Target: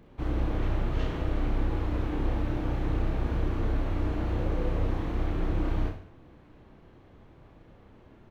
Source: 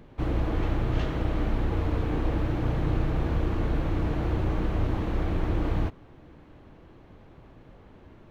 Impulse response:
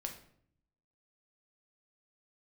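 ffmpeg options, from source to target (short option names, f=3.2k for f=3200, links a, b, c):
-filter_complex "[0:a]asettb=1/sr,asplit=3[a][b][c];[a]atrim=end=4.374[d];[b]atrim=start=4.37:end=4.87,asetpts=PTS-STARTPTS,afade=t=in:d=0.004:c=qsin,afade=t=out:st=0.496:d=0.004:c=qsin,equalizer=f=500:w=6.7:g=11[e];[c]atrim=start=4.866[f];[d][e]acrossfade=d=0.004:c1=hsin:c2=qsin[g];[g][f]acrossfade=d=0.004:c1=qsin:c2=hsin,aecho=1:1:30|64.5|104.2|149.8|202.3:0.631|0.398|0.251|0.158|0.1,volume=-5dB"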